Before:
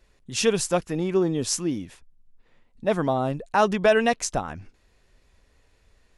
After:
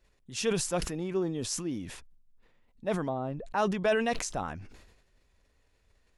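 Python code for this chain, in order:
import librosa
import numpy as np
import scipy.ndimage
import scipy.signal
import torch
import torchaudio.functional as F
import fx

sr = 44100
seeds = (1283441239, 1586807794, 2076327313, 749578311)

y = fx.lowpass(x, sr, hz=fx.line((3.08, 1100.0), (3.56, 2200.0)), slope=6, at=(3.08, 3.56), fade=0.02)
y = fx.sustainer(y, sr, db_per_s=54.0)
y = y * 10.0 ** (-8.5 / 20.0)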